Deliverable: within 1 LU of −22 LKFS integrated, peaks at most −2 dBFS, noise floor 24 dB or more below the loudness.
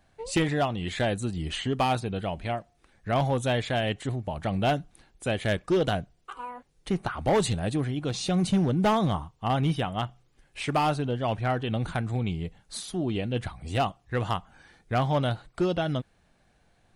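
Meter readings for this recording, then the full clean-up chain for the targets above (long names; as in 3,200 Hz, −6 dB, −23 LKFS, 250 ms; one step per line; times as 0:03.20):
share of clipped samples 1.0%; peaks flattened at −18.0 dBFS; integrated loudness −28.5 LKFS; sample peak −18.0 dBFS; target loudness −22.0 LKFS
→ clipped peaks rebuilt −18 dBFS
level +6.5 dB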